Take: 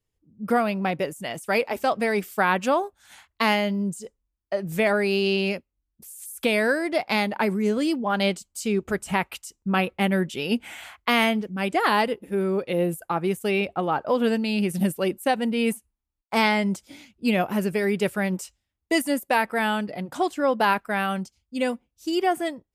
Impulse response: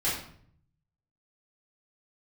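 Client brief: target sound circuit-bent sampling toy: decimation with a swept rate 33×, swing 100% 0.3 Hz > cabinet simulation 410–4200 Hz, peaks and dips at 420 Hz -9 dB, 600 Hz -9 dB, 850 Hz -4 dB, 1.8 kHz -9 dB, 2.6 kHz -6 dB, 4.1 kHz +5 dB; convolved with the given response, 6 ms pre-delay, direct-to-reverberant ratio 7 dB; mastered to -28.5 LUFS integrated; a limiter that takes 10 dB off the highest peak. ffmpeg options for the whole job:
-filter_complex "[0:a]alimiter=limit=0.141:level=0:latency=1,asplit=2[s0][s1];[1:a]atrim=start_sample=2205,adelay=6[s2];[s1][s2]afir=irnorm=-1:irlink=0,volume=0.158[s3];[s0][s3]amix=inputs=2:normalize=0,acrusher=samples=33:mix=1:aa=0.000001:lfo=1:lforange=33:lforate=0.3,highpass=410,equalizer=f=420:t=q:w=4:g=-9,equalizer=f=600:t=q:w=4:g=-9,equalizer=f=850:t=q:w=4:g=-4,equalizer=f=1800:t=q:w=4:g=-9,equalizer=f=2600:t=q:w=4:g=-6,equalizer=f=4100:t=q:w=4:g=5,lowpass=f=4200:w=0.5412,lowpass=f=4200:w=1.3066,volume=2"

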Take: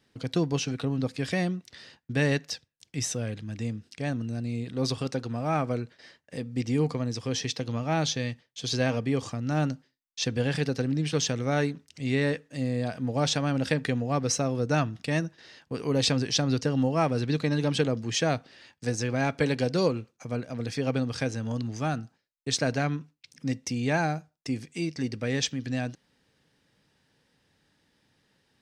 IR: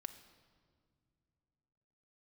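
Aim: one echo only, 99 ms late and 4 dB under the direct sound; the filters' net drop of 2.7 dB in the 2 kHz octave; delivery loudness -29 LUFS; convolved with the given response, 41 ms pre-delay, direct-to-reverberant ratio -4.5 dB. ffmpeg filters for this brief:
-filter_complex "[0:a]equalizer=f=2000:t=o:g=-3.5,aecho=1:1:99:0.631,asplit=2[s0][s1];[1:a]atrim=start_sample=2205,adelay=41[s2];[s1][s2]afir=irnorm=-1:irlink=0,volume=2.66[s3];[s0][s3]amix=inputs=2:normalize=0,volume=0.447"

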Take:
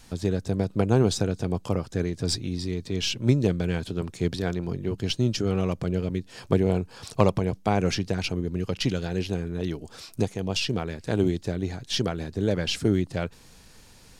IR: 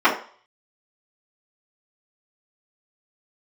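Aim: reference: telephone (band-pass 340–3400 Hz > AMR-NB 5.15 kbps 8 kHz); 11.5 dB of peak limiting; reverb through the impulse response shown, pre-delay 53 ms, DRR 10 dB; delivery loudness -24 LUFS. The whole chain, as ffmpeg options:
-filter_complex "[0:a]alimiter=limit=0.158:level=0:latency=1,asplit=2[s0][s1];[1:a]atrim=start_sample=2205,adelay=53[s2];[s1][s2]afir=irnorm=-1:irlink=0,volume=0.0224[s3];[s0][s3]amix=inputs=2:normalize=0,highpass=340,lowpass=3400,volume=3.98" -ar 8000 -c:a libopencore_amrnb -b:a 5150

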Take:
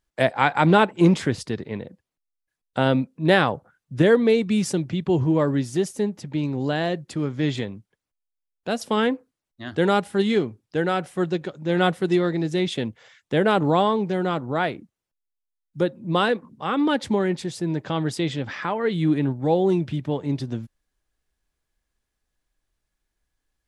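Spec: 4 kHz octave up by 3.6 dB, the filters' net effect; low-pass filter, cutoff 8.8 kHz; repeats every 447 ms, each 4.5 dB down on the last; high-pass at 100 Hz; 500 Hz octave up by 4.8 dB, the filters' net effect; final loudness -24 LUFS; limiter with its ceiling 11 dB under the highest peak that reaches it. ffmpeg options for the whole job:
-af "highpass=100,lowpass=8800,equalizer=f=500:t=o:g=6,equalizer=f=4000:t=o:g=4.5,alimiter=limit=0.282:level=0:latency=1,aecho=1:1:447|894|1341|1788|2235|2682|3129|3576|4023:0.596|0.357|0.214|0.129|0.0772|0.0463|0.0278|0.0167|0.01,volume=0.75"

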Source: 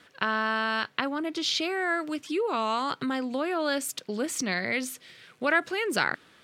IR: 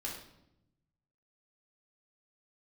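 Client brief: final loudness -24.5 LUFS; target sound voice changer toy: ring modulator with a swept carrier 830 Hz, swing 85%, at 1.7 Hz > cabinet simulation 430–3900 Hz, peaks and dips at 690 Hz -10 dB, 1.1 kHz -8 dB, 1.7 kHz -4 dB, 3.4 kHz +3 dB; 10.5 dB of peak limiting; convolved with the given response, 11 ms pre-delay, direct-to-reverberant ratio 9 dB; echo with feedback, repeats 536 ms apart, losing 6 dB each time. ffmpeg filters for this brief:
-filter_complex "[0:a]alimiter=limit=0.119:level=0:latency=1,aecho=1:1:536|1072|1608|2144|2680|3216:0.501|0.251|0.125|0.0626|0.0313|0.0157,asplit=2[s0][s1];[1:a]atrim=start_sample=2205,adelay=11[s2];[s1][s2]afir=irnorm=-1:irlink=0,volume=0.335[s3];[s0][s3]amix=inputs=2:normalize=0,aeval=exprs='val(0)*sin(2*PI*830*n/s+830*0.85/1.7*sin(2*PI*1.7*n/s))':c=same,highpass=430,equalizer=f=690:t=q:w=4:g=-10,equalizer=f=1100:t=q:w=4:g=-8,equalizer=f=1700:t=q:w=4:g=-4,equalizer=f=3400:t=q:w=4:g=3,lowpass=f=3900:w=0.5412,lowpass=f=3900:w=1.3066,volume=2.99"

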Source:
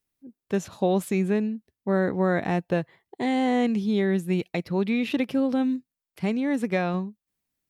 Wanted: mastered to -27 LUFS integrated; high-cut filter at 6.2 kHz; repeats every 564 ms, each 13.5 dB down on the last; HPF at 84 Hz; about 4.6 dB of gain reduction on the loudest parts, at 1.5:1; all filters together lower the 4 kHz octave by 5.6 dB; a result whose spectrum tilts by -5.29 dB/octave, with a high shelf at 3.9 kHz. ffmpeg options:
-af "highpass=84,lowpass=6200,highshelf=f=3900:g=-6,equalizer=f=4000:t=o:g=-3.5,acompressor=threshold=0.0251:ratio=1.5,aecho=1:1:564|1128:0.211|0.0444,volume=1.41"

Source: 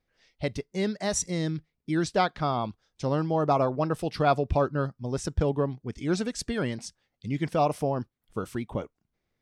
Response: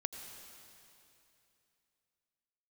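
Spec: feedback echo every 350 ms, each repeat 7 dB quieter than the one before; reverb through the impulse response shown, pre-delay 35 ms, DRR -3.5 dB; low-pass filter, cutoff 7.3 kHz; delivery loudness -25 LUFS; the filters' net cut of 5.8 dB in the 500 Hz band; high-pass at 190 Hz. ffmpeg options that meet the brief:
-filter_complex "[0:a]highpass=190,lowpass=7300,equalizer=f=500:t=o:g=-7.5,aecho=1:1:350|700|1050|1400|1750:0.447|0.201|0.0905|0.0407|0.0183,asplit=2[s0][s1];[1:a]atrim=start_sample=2205,adelay=35[s2];[s1][s2]afir=irnorm=-1:irlink=0,volume=1.58[s3];[s0][s3]amix=inputs=2:normalize=0,volume=1.26"

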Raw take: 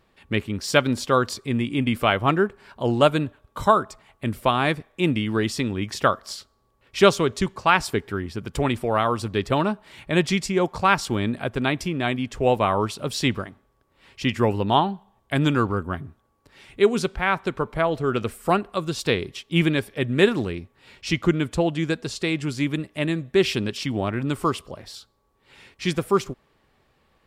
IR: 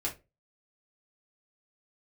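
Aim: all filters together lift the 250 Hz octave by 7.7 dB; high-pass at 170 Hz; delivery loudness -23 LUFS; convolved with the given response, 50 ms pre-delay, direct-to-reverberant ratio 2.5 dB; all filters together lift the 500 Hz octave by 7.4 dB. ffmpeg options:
-filter_complex "[0:a]highpass=170,equalizer=f=250:t=o:g=9,equalizer=f=500:t=o:g=6.5,asplit=2[s0][s1];[1:a]atrim=start_sample=2205,adelay=50[s2];[s1][s2]afir=irnorm=-1:irlink=0,volume=0.501[s3];[s0][s3]amix=inputs=2:normalize=0,volume=0.422"

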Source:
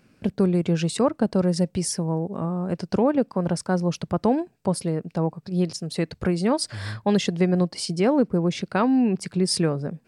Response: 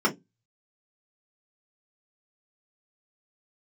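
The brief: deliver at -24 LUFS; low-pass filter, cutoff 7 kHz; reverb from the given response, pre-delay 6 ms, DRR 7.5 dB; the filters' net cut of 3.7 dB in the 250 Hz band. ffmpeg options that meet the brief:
-filter_complex "[0:a]lowpass=7000,equalizer=f=250:t=o:g=-5.5,asplit=2[s0][s1];[1:a]atrim=start_sample=2205,adelay=6[s2];[s1][s2]afir=irnorm=-1:irlink=0,volume=0.0841[s3];[s0][s3]amix=inputs=2:normalize=0,volume=1.19"

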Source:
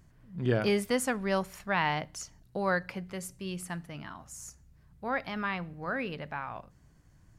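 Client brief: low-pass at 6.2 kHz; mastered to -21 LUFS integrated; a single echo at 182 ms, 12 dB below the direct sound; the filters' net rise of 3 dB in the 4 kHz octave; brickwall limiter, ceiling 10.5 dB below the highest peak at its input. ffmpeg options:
-af "lowpass=6200,equalizer=f=4000:t=o:g=5,alimiter=level_in=1.06:limit=0.0631:level=0:latency=1,volume=0.944,aecho=1:1:182:0.251,volume=5.96"

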